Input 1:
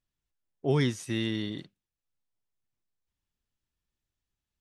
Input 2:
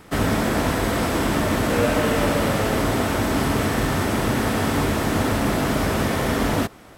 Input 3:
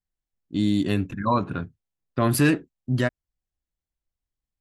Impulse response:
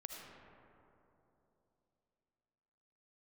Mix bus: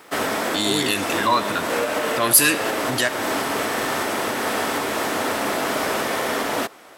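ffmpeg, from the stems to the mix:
-filter_complex "[0:a]volume=2.5dB[a];[1:a]highpass=f=260:p=1,volume=-4.5dB[b];[2:a]crystalizer=i=10:c=0,volume=-1.5dB,asplit=2[c][d];[d]volume=-5.5dB[e];[b][c]amix=inputs=2:normalize=0,acontrast=89,alimiter=limit=-11.5dB:level=0:latency=1:release=219,volume=0dB[f];[3:a]atrim=start_sample=2205[g];[e][g]afir=irnorm=-1:irlink=0[h];[a][f][h]amix=inputs=3:normalize=0,bass=f=250:g=-13,treble=f=4k:g=0"

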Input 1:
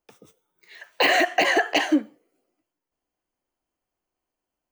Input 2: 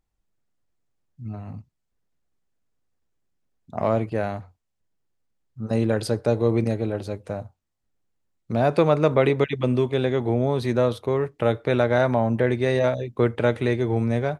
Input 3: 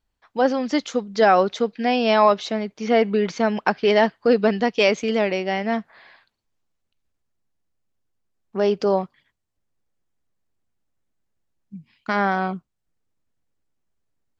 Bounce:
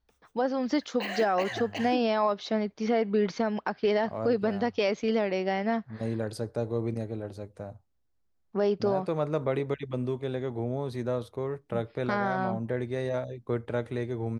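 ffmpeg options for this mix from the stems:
-filter_complex "[0:a]volume=-16dB[a];[1:a]adelay=300,volume=-9.5dB[b];[2:a]lowpass=f=5.7k:w=0.5412,lowpass=f=5.7k:w=1.3066,volume=-2dB[c];[b][c]amix=inputs=2:normalize=0,equalizer=f=2.7k:w=1.5:g=-5,alimiter=limit=-16.5dB:level=0:latency=1:release=269,volume=0dB[d];[a][d]amix=inputs=2:normalize=0,equalizer=f=63:w=4.5:g=12"

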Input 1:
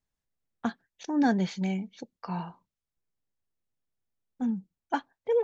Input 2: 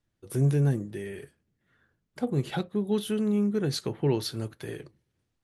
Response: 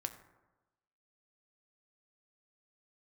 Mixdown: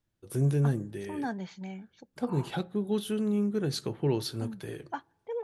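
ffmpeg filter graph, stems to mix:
-filter_complex "[0:a]equalizer=f=1.1k:w=1.1:g=6,volume=-11.5dB,asplit=2[a][b];[b]volume=-22.5dB[c];[1:a]equalizer=f=2k:w=4.1:g=-3,volume=-4dB,asplit=2[d][e];[e]volume=-11dB[f];[2:a]atrim=start_sample=2205[g];[c][f]amix=inputs=2:normalize=0[h];[h][g]afir=irnorm=-1:irlink=0[i];[a][d][i]amix=inputs=3:normalize=0"

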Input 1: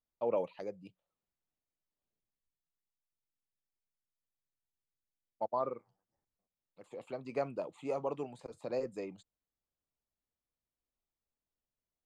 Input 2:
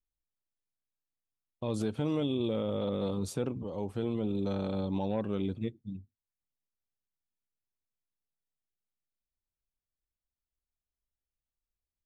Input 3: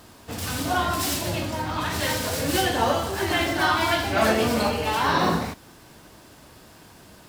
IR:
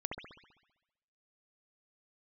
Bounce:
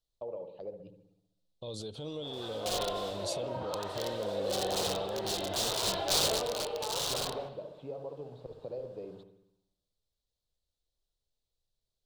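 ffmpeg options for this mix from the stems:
-filter_complex "[0:a]acompressor=threshold=-41dB:ratio=6,lowpass=2.7k,aemphasis=mode=reproduction:type=bsi,volume=-8dB,asplit=2[a][b];[b]volume=-4dB[c];[1:a]volume=-4dB,asplit=2[d][e];[2:a]highpass=56,acrossover=split=340 2700:gain=0.0794 1 0.0891[f][g][h];[f][g][h]amix=inputs=3:normalize=0,aeval=exprs='(mod(9.44*val(0)+1,2)-1)/9.44':c=same,adelay=1950,volume=-7.5dB,afade=t=out:st=6.03:d=0.5:silence=0.398107,asplit=2[i][j];[j]volume=-6.5dB[k];[e]apad=whole_len=407140[l];[i][l]sidechaincompress=threshold=-47dB:ratio=8:attack=16:release=339[m];[a][d]amix=inputs=2:normalize=0,equalizer=f=3.7k:t=o:w=0.99:g=8,alimiter=level_in=10dB:limit=-24dB:level=0:latency=1:release=48,volume=-10dB,volume=0dB[n];[3:a]atrim=start_sample=2205[o];[c][k]amix=inputs=2:normalize=0[p];[p][o]afir=irnorm=-1:irlink=0[q];[m][n][q]amix=inputs=3:normalize=0,equalizer=f=125:t=o:w=1:g=3,equalizer=f=250:t=o:w=1:g=-6,equalizer=f=500:t=o:w=1:g=9,equalizer=f=2k:t=o:w=1:g=-12,equalizer=f=4k:t=o:w=1:g=11,equalizer=f=8k:t=o:w=1:g=5"

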